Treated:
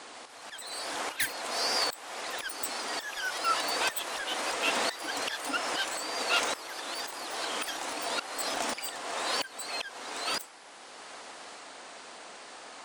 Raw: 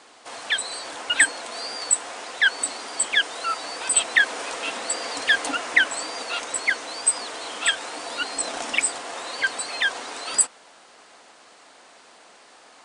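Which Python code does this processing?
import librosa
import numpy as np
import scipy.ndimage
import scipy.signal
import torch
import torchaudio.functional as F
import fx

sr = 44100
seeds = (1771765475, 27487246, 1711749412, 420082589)

y = fx.self_delay(x, sr, depth_ms=0.11)
y = fx.auto_swell(y, sr, attack_ms=733.0)
y = fx.echo_pitch(y, sr, ms=148, semitones=2, count=3, db_per_echo=-6.0)
y = F.gain(torch.from_numpy(y), 4.0).numpy()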